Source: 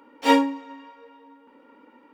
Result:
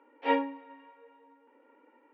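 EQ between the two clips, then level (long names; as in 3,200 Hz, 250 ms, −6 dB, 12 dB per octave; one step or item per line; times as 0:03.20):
high-pass filter 310 Hz 24 dB per octave
low-pass filter 2,600 Hz 24 dB per octave
parametric band 1,200 Hz −6 dB 0.47 octaves
−6.5 dB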